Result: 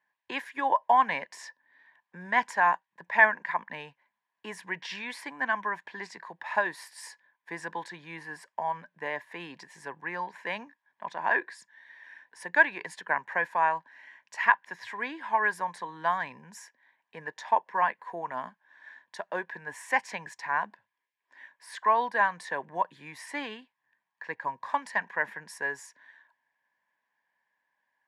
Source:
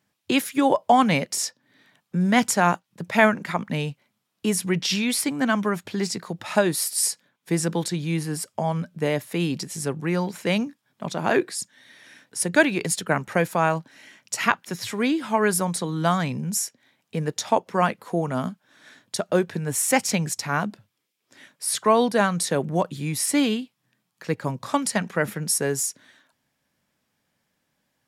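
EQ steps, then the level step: double band-pass 1300 Hz, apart 0.77 oct; +4.5 dB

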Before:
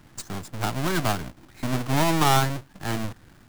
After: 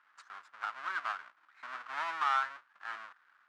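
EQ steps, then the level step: ladder band-pass 1600 Hz, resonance 50%; bell 1100 Hz +4 dB 0.77 oct; 0.0 dB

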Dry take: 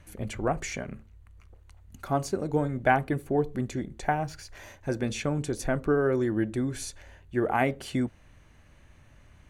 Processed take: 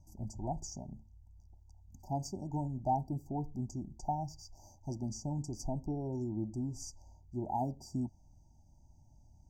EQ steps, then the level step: brick-wall FIR band-stop 960–4600 Hz; fixed phaser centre 2400 Hz, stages 8; -5.0 dB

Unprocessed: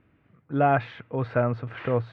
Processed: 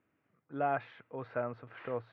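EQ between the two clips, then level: HPF 430 Hz 6 dB/oct; high shelf 3300 Hz -9 dB; -8.5 dB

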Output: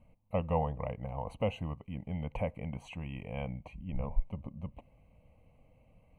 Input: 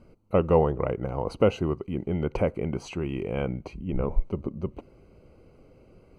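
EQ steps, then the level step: fixed phaser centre 1400 Hz, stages 6; -5.5 dB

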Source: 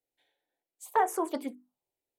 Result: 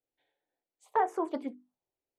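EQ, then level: tape spacing loss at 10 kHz 21 dB; 0.0 dB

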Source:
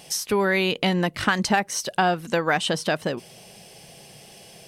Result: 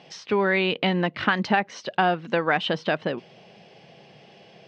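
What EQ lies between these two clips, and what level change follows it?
dynamic EQ 3000 Hz, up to +3 dB, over -40 dBFS, Q 0.95; BPF 140–4400 Hz; air absorption 170 m; 0.0 dB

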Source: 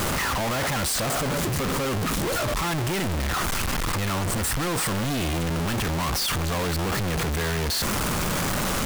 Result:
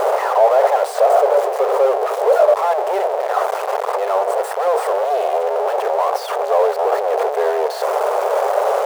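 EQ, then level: brick-wall FIR high-pass 390 Hz; tilt shelf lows +10 dB, about 1100 Hz; bell 680 Hz +15 dB 1.3 oct; 0.0 dB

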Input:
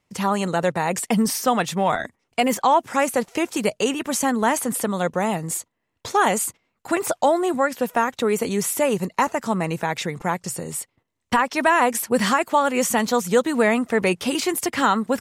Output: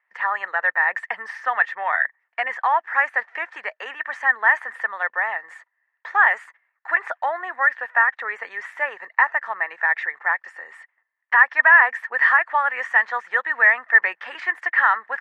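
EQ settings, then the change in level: ladder high-pass 670 Hz, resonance 30%; synth low-pass 1800 Hz, resonance Q 14; 0.0 dB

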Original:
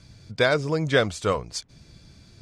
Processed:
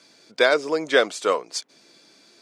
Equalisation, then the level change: HPF 300 Hz 24 dB/oct; +3.0 dB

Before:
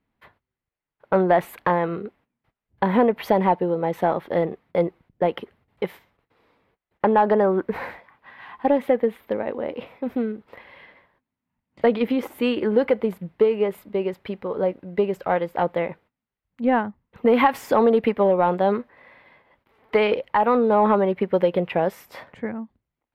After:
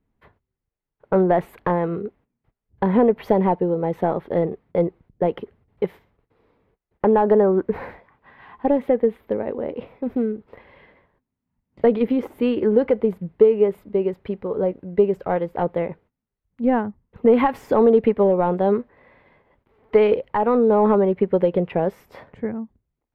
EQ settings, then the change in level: tilt -2.5 dB/oct; bell 420 Hz +5 dB 0.33 oct; high shelf 12000 Hz +2.5 dB; -3.0 dB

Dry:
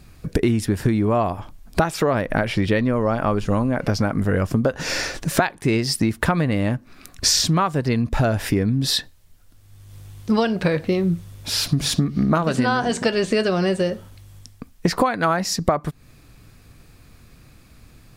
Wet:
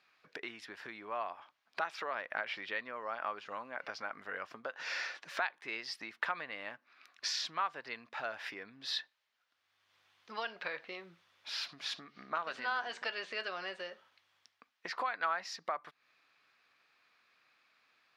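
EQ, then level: HPF 1200 Hz 12 dB/oct; air absorption 260 m; high shelf 6800 Hz +4.5 dB; -7.5 dB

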